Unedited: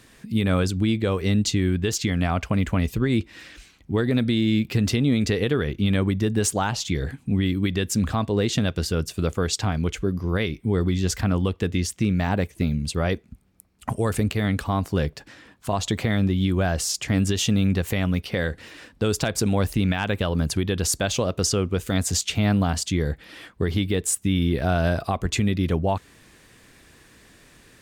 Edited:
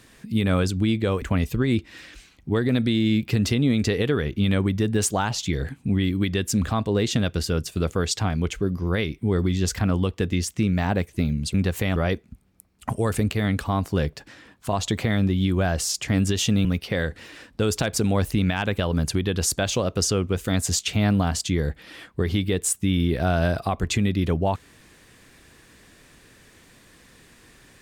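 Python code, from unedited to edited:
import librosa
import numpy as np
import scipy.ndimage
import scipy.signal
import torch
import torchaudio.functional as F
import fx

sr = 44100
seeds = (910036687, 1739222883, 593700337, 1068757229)

y = fx.edit(x, sr, fx.cut(start_s=1.22, length_s=1.42),
    fx.move(start_s=17.65, length_s=0.42, to_s=12.96), tone=tone)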